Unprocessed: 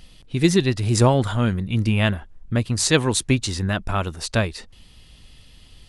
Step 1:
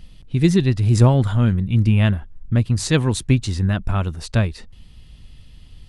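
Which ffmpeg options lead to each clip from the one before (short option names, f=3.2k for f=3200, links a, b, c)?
-af "bass=f=250:g=9,treble=f=4k:g=-3,volume=-3dB"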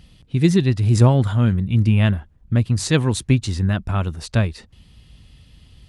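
-af "highpass=51"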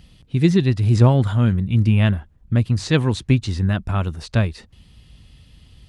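-filter_complex "[0:a]acrossover=split=5700[a][b];[b]acompressor=threshold=-46dB:ratio=4:attack=1:release=60[c];[a][c]amix=inputs=2:normalize=0"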